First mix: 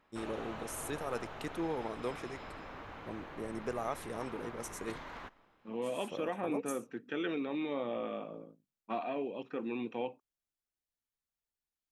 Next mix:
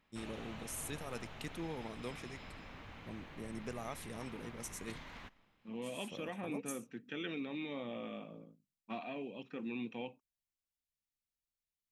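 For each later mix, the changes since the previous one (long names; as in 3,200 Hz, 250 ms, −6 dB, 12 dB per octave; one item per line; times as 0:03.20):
master: add flat-topped bell 700 Hz −8 dB 2.7 octaves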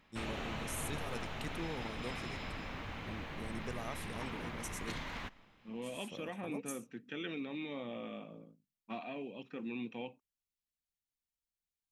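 background +8.0 dB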